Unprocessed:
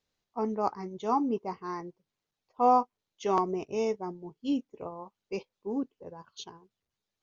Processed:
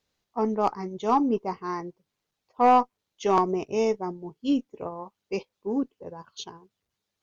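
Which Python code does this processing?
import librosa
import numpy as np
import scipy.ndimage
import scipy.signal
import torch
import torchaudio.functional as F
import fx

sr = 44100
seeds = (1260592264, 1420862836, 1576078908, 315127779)

y = fx.cheby_harmonics(x, sr, harmonics=(2, 7), levels_db=(-20, -32), full_scale_db=-12.5)
y = 10.0 ** (-17.5 / 20.0) * np.tanh(y / 10.0 ** (-17.5 / 20.0))
y = F.gain(torch.from_numpy(y), 6.5).numpy()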